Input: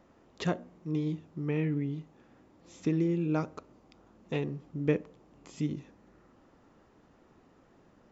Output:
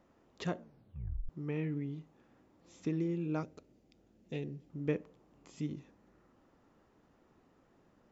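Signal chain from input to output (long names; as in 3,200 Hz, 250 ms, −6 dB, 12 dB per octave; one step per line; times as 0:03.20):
0:00.59: tape stop 0.70 s
0:03.43–0:04.70: parametric band 1,100 Hz −15 dB 0.97 octaves
level −6 dB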